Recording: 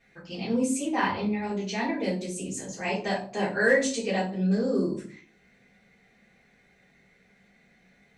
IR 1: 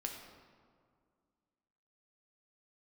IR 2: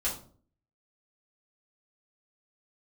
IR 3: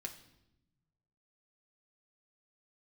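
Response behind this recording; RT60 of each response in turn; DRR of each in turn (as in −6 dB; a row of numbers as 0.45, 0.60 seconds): 2; 2.1, 0.45, 0.90 seconds; 1.5, −8.0, 0.5 decibels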